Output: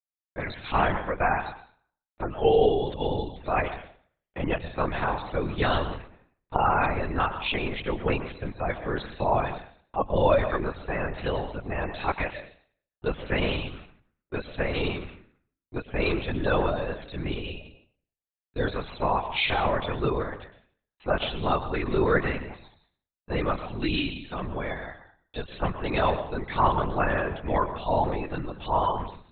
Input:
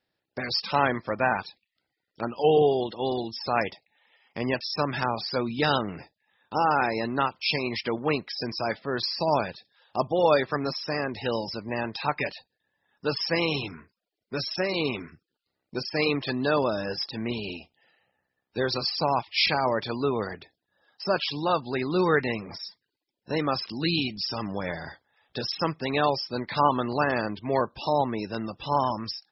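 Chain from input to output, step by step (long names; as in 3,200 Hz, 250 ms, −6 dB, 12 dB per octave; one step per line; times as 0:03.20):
noise gate −50 dBFS, range −33 dB
dense smooth reverb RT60 0.54 s, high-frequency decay 0.85×, pre-delay 100 ms, DRR 10.5 dB
linear-prediction vocoder at 8 kHz whisper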